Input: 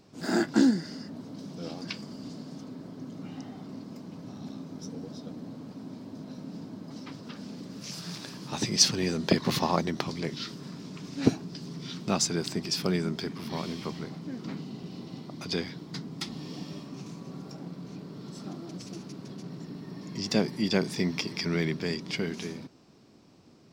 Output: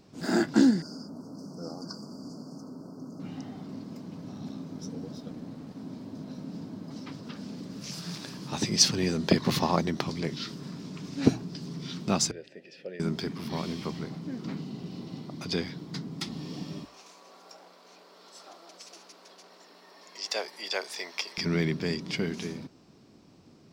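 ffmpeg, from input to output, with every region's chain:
-filter_complex "[0:a]asettb=1/sr,asplit=3[s0][s1][s2];[s0]atrim=end=0.824[s3];[s1]atrim=start=0.82:end=3.2,asetpts=PTS-STARTPTS,afade=t=in:d=0.004:c=qsin,afade=t=out:st=2.376:d=0.004:c=qsin,asuperstop=centerf=2600:order=20:qfactor=0.87,lowshelf=f=120:g=-11.5[s4];[s2]atrim=start=3.196[s5];[s3][s4]acrossfade=d=0.004:c1=hsin:c2=qsin[s6];[s6][s5]acrossfade=d=0.004:c1=qsin:c2=hsin,asettb=1/sr,asplit=3[s7][s8][s9];[s7]atrim=end=5.154[s10];[s8]atrim=start=5.15:end=5.79,asetpts=PTS-STARTPTS,afade=t=in:d=0.004:c=qsin,afade=t=out:st=0.636:d=0.004:c=qsin,equalizer=f=13000:w=4.7:g=-3.5,aeval=exprs='sgn(val(0))*max(abs(val(0))-0.00158,0)':c=same[s11];[s9]atrim=start=5.786[s12];[s10][s11]acrossfade=d=0.004:c1=hsin:c2=qsin[s13];[s13][s12]acrossfade=d=0.004:c1=qsin:c2=hsin,asettb=1/sr,asplit=3[s14][s15][s16];[s14]atrim=end=12.314[s17];[s15]atrim=start=12.31:end=13,asetpts=PTS-STARTPTS,afade=t=in:d=0.004:c=qsin,afade=t=out:st=0.686:d=0.004:c=qsin,highshelf=f=11000:g=-9.5,acrusher=bits=9:dc=4:mix=0:aa=0.000001,asplit=3[s18][s19][s20];[s18]bandpass=f=530:t=q:w=8,volume=1[s21];[s19]bandpass=f=1840:t=q:w=8,volume=0.501[s22];[s20]bandpass=f=2480:t=q:w=8,volume=0.355[s23];[s21][s22][s23]amix=inputs=3:normalize=0[s24];[s16]atrim=start=12.996[s25];[s17][s24]acrossfade=d=0.004:c1=hsin:c2=qsin[s26];[s26][s25]acrossfade=d=0.004:c1=qsin:c2=hsin,asettb=1/sr,asplit=3[s27][s28][s29];[s27]atrim=end=16.854[s30];[s28]atrim=start=16.85:end=21.38,asetpts=PTS-STARTPTS,afade=t=in:d=0.004:c=qsin,afade=t=out:st=4.526:d=0.004:c=qsin,highpass=f=550:w=0.5412,highpass=f=550:w=1.3066,aeval=exprs='val(0)+0.000891*(sin(2*PI*60*n/s)+sin(2*PI*2*60*n/s)/2+sin(2*PI*3*60*n/s)/3+sin(2*PI*4*60*n/s)/4+sin(2*PI*5*60*n/s)/5)':c=same[s31];[s29]atrim=start=21.376[s32];[s30][s31]acrossfade=d=0.004:c1=hsin:c2=qsin[s33];[s33][s32]acrossfade=d=0.004:c1=qsin:c2=hsin,lowshelf=f=180:g=3.5,bandreject=f=60:t=h:w=6,bandreject=f=120:t=h:w=6"

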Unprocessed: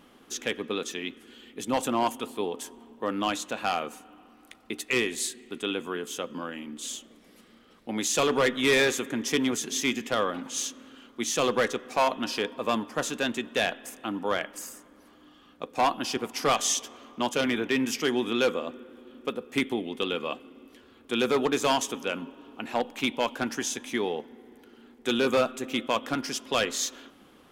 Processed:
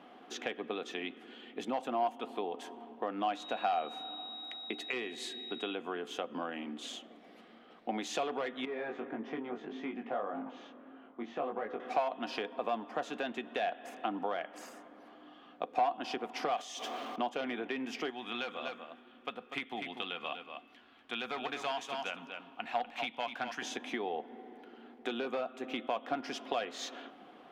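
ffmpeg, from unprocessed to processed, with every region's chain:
-filter_complex "[0:a]asettb=1/sr,asplit=3[s0][s1][s2];[s0]atrim=end=3.384[s3];[s1]atrim=start=3.38:end=5.75,asetpts=PTS-STARTPTS,afade=t=in:d=0.004:c=qsin,afade=t=out:st=2.366:d=0.004:c=qsin,highpass=50,aeval=exprs='val(0)+0.0126*sin(2*PI*3800*n/s)':c=same[s4];[s2]atrim=start=5.746[s5];[s3][s4]acrossfade=d=0.004:c1=hsin:c2=qsin[s6];[s6][s5]acrossfade=d=0.004:c1=qsin:c2=hsin,asettb=1/sr,asplit=3[s7][s8][s9];[s7]atrim=end=8.654[s10];[s8]atrim=start=8.65:end=11.8,asetpts=PTS-STARTPTS,afade=t=in:d=0.004:c=qsin,afade=t=out:st=3.146:d=0.004:c=qsin,lowpass=1500,acompressor=threshold=0.0251:ratio=2:attack=3.2:release=140:knee=1:detection=peak,flanger=delay=18.5:depth=2.7:speed=1.7[s11];[s9]atrim=start=11.796[s12];[s10][s11]acrossfade=d=0.004:c1=hsin:c2=qsin[s13];[s13][s12]acrossfade=d=0.004:c1=qsin:c2=hsin,asettb=1/sr,asplit=3[s14][s15][s16];[s14]atrim=end=16.564[s17];[s15]atrim=start=16.56:end=17.16,asetpts=PTS-STARTPTS,afade=t=in:d=0.004:c=qsin,afade=t=out:st=0.596:d=0.004:c=qsin,aeval=exprs='val(0)+0.5*0.00708*sgn(val(0))':c=same,highshelf=f=3700:g=8,acompressor=threshold=0.0447:ratio=5:attack=3.2:release=140:knee=1:detection=peak[s18];[s16]atrim=start=17.156[s19];[s17][s18]acrossfade=d=0.004:c1=hsin:c2=qsin[s20];[s20][s19]acrossfade=d=0.004:c1=qsin:c2=hsin,asettb=1/sr,asplit=3[s21][s22][s23];[s21]atrim=end=18.104[s24];[s22]atrim=start=18.1:end=23.62,asetpts=PTS-STARTPTS,afade=t=in:d=0.004:c=qsin,afade=t=out:st=5.516:d=0.004:c=qsin,equalizer=f=390:w=0.66:g=-14.5,aecho=1:1:244:0.335,atrim=end_sample=243432[s25];[s23]atrim=start=23.616[s26];[s24][s25]acrossfade=d=0.004:c1=hsin:c2=qsin[s27];[s27][s26]acrossfade=d=0.004:c1=qsin:c2=hsin,acrossover=split=180 4000:gain=0.112 1 0.1[s28][s29][s30];[s28][s29][s30]amix=inputs=3:normalize=0,acompressor=threshold=0.0178:ratio=6,equalizer=f=720:t=o:w=0.27:g=13"

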